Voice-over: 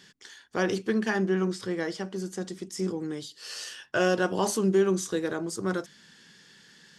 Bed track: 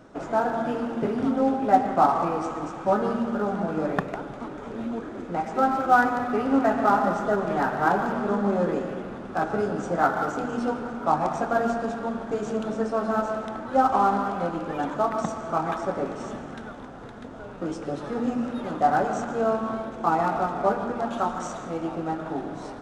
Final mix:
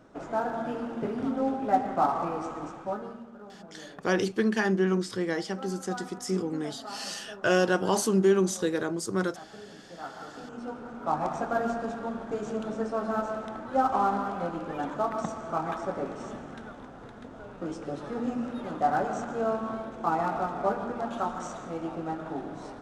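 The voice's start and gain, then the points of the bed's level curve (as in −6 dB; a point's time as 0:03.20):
3.50 s, +1.0 dB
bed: 0:02.70 −5.5 dB
0:03.32 −20.5 dB
0:09.87 −20.5 dB
0:11.23 −4.5 dB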